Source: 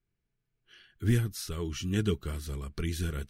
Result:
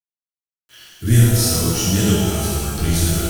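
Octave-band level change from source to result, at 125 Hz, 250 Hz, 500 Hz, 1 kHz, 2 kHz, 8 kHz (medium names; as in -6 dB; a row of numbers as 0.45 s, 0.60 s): +14.5 dB, +13.5 dB, +12.5 dB, +18.0 dB, +12.0 dB, +23.0 dB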